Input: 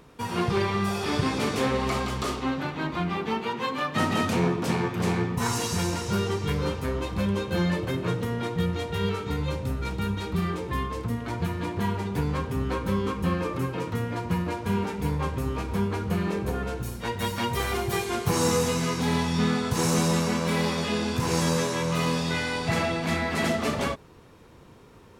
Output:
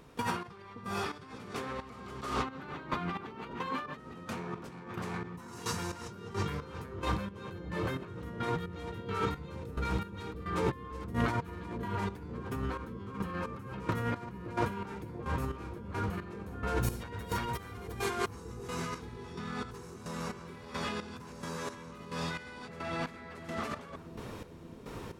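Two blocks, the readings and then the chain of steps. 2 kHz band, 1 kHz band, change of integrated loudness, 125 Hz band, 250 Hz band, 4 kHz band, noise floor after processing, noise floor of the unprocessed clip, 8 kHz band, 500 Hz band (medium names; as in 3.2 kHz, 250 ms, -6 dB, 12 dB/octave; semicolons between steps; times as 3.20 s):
-9.5 dB, -7.5 dB, -10.5 dB, -11.0 dB, -12.0 dB, -12.5 dB, -49 dBFS, -50 dBFS, -14.0 dB, -10.5 dB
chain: dynamic bell 1.3 kHz, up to +8 dB, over -45 dBFS, Q 1.2; compressor with a negative ratio -35 dBFS, ratio -1; trance gate "..xxx..." 175 bpm -12 dB; on a send: bucket-brigade echo 570 ms, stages 2048, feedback 79%, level -11 dB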